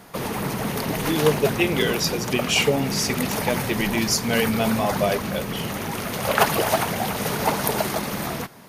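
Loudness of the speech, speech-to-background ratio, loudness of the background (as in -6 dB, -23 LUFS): -23.5 LUFS, 2.0 dB, -25.5 LUFS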